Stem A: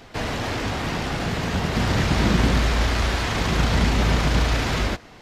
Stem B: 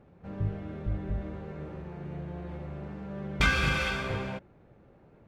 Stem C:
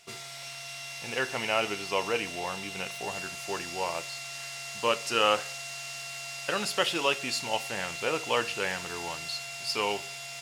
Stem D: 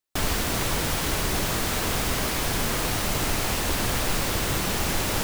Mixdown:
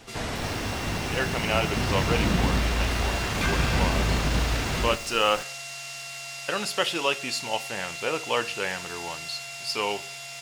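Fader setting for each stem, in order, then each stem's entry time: −5.0, −5.0, +1.5, −17.5 decibels; 0.00, 0.00, 0.00, 0.20 seconds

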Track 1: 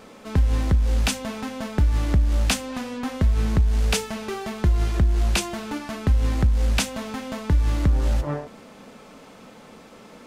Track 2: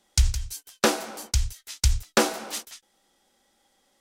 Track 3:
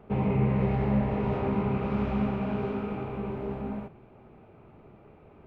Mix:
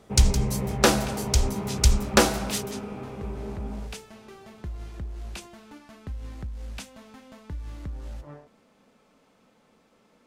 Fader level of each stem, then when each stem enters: −16.5, +2.0, −3.5 decibels; 0.00, 0.00, 0.00 seconds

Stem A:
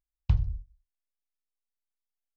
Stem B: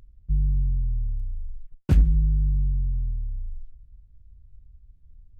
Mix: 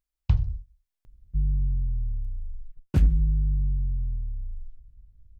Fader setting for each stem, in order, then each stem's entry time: +2.5, −2.0 decibels; 0.00, 1.05 seconds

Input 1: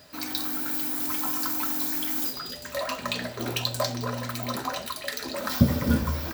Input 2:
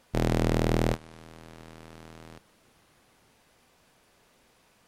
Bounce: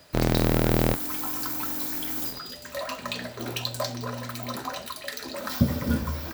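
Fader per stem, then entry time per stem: −2.5, +2.5 decibels; 0.00, 0.00 seconds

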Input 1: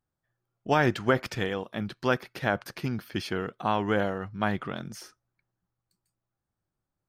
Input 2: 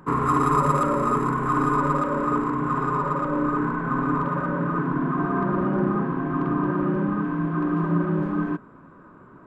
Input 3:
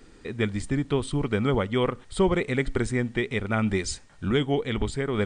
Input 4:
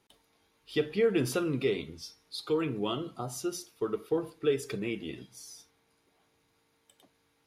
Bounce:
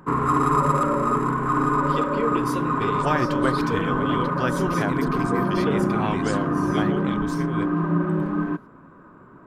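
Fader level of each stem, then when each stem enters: −1.5, +0.5, −7.0, −1.5 decibels; 2.35, 0.00, 2.40, 1.20 seconds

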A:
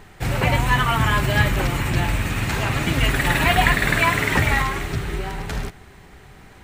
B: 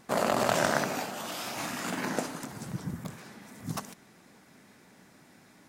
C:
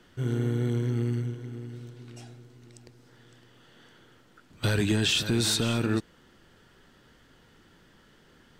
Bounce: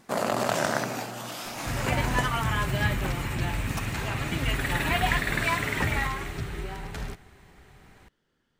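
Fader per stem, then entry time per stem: −8.0, 0.0, −16.5 decibels; 1.45, 0.00, 0.00 seconds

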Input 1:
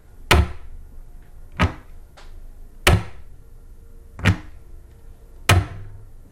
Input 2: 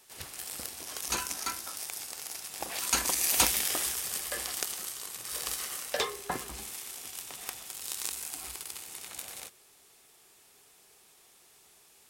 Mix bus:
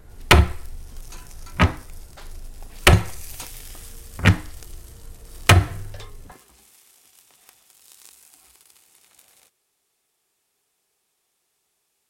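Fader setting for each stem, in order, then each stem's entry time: +2.0, −12.5 decibels; 0.00, 0.00 seconds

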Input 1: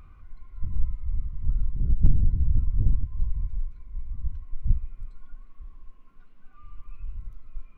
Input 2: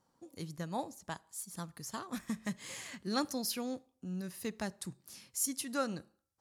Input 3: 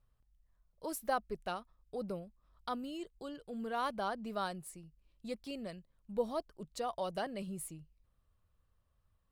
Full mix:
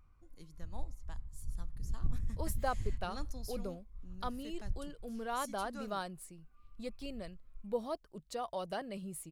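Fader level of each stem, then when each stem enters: −15.5, −13.5, −1.5 decibels; 0.00, 0.00, 1.55 seconds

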